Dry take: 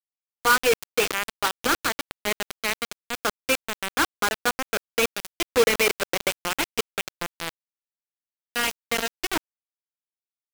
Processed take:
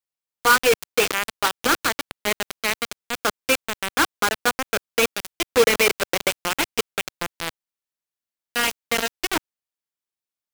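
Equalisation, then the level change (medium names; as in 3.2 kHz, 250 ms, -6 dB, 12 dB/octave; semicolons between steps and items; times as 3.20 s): bass shelf 100 Hz -2.5 dB; +3.0 dB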